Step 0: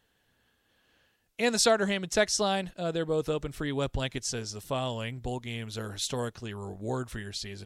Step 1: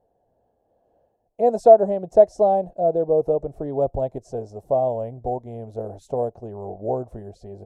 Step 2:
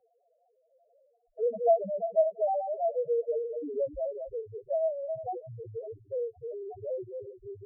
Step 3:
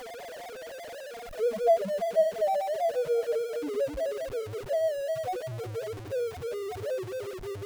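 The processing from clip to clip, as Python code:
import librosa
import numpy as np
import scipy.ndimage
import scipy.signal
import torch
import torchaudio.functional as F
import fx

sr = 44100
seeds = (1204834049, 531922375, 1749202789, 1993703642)

y1 = fx.curve_eq(x, sr, hz=(270.0, 700.0, 1300.0, 2100.0, 3300.0, 7100.0), db=(0, 15, -17, -25, -29, -21))
y1 = F.gain(torch.from_numpy(y1), 1.0).numpy()
y2 = fx.reverse_delay_fb(y1, sr, ms=172, feedback_pct=41, wet_db=-8)
y2 = fx.spec_topn(y2, sr, count=1)
y2 = fx.band_squash(y2, sr, depth_pct=40)
y2 = F.gain(torch.from_numpy(y2), -3.0).numpy()
y3 = y2 + 0.5 * 10.0 ** (-35.5 / 20.0) * np.sign(y2)
y3 = fx.echo_feedback(y3, sr, ms=341, feedback_pct=39, wet_db=-18.0)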